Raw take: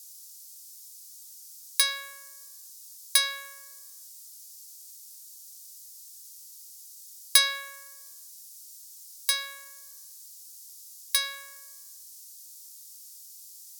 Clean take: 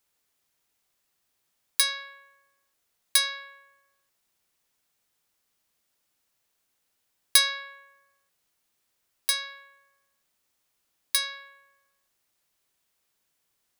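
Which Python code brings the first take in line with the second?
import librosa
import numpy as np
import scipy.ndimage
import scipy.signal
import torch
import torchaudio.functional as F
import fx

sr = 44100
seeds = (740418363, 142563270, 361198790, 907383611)

y = fx.noise_reduce(x, sr, print_start_s=4.96, print_end_s=5.46, reduce_db=28.0)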